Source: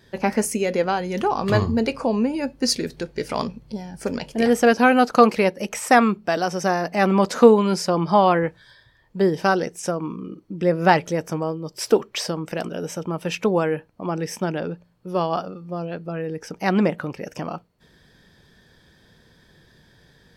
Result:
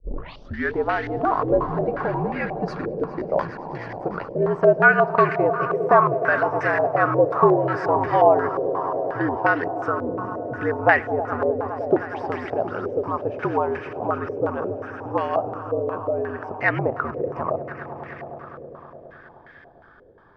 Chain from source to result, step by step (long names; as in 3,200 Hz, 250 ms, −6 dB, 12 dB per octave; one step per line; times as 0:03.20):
turntable start at the beginning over 0.76 s
in parallel at +3 dB: downward compressor, threshold −28 dBFS, peak gain reduction 20 dB
on the sum: frequency shifter −66 Hz
low-shelf EQ 240 Hz −9.5 dB
on a send: echo that builds up and dies away 103 ms, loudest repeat 5, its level −16 dB
on the sum: low-pass on a step sequencer 5.6 Hz 510–1,900 Hz
level −5.5 dB